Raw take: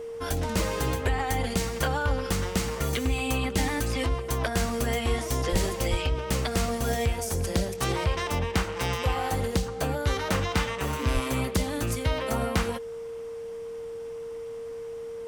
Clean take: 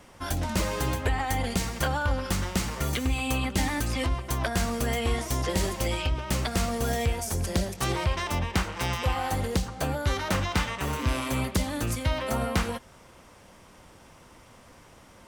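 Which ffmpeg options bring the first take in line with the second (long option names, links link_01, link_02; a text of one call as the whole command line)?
ffmpeg -i in.wav -filter_complex "[0:a]bandreject=frequency=460:width=30,asplit=3[link_01][link_02][link_03];[link_01]afade=type=out:start_time=5.51:duration=0.02[link_04];[link_02]highpass=frequency=140:width=0.5412,highpass=frequency=140:width=1.3066,afade=type=in:start_time=5.51:duration=0.02,afade=type=out:start_time=5.63:duration=0.02[link_05];[link_03]afade=type=in:start_time=5.63:duration=0.02[link_06];[link_04][link_05][link_06]amix=inputs=3:normalize=0,asplit=3[link_07][link_08][link_09];[link_07]afade=type=out:start_time=5.9:duration=0.02[link_10];[link_08]highpass=frequency=140:width=0.5412,highpass=frequency=140:width=1.3066,afade=type=in:start_time=5.9:duration=0.02,afade=type=out:start_time=6.02:duration=0.02[link_11];[link_09]afade=type=in:start_time=6.02:duration=0.02[link_12];[link_10][link_11][link_12]amix=inputs=3:normalize=0,asplit=3[link_13][link_14][link_15];[link_13]afade=type=out:start_time=11.13:duration=0.02[link_16];[link_14]highpass=frequency=140:width=0.5412,highpass=frequency=140:width=1.3066,afade=type=in:start_time=11.13:duration=0.02,afade=type=out:start_time=11.25:duration=0.02[link_17];[link_15]afade=type=in:start_time=11.25:duration=0.02[link_18];[link_16][link_17][link_18]amix=inputs=3:normalize=0" out.wav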